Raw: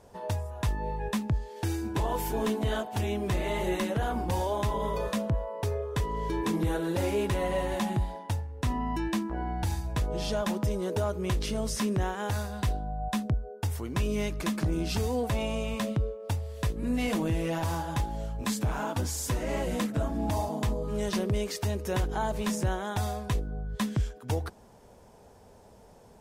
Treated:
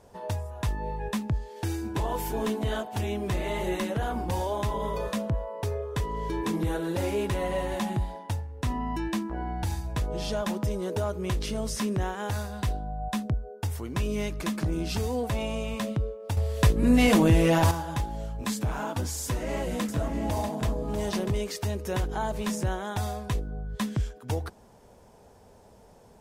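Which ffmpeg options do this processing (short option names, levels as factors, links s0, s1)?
-filter_complex "[0:a]asettb=1/sr,asplit=3[s0][s1][s2];[s0]atrim=end=19.244[s3];[s1]atrim=start=19.24:end=21.41,asetpts=PTS-STARTPTS,afade=t=in:d=0.004:c=qsin,afade=t=out:st=2.166:d=0.004:c=qsin,aecho=1:1:643:0.422,atrim=end_sample=95697[s4];[s2]atrim=start=21.406[s5];[s3][s4]acrossfade=d=0.004:c1=hsin:c2=qsin[s6];[s6][s5]acrossfade=d=0.004:c1=qsin:c2=hsin,asplit=3[s7][s8][s9];[s7]atrim=end=16.372[s10];[s8]atrim=start=16.368:end=17.712,asetpts=PTS-STARTPTS,volume=2.82[s11];[s9]atrim=start=17.708[s12];[s10][s11]acrossfade=d=0.004:c1=hsin:c2=hsin[s13];[s13][s12]acrossfade=d=0.004:c1=hsin:c2=hsin"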